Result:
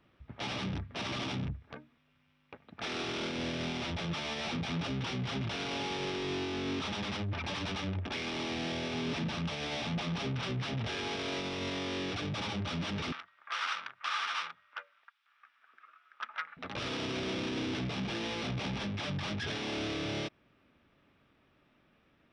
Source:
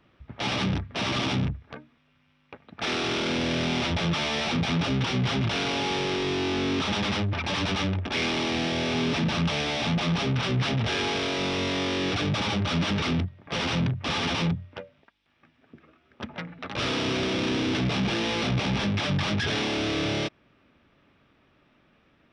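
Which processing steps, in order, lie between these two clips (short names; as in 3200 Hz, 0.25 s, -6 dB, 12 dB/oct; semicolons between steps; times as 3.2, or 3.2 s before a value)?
limiter -22.5 dBFS, peak gain reduction 8.5 dB; 13.12–16.57 resonant high-pass 1300 Hz, resonance Q 4.1; gain -5.5 dB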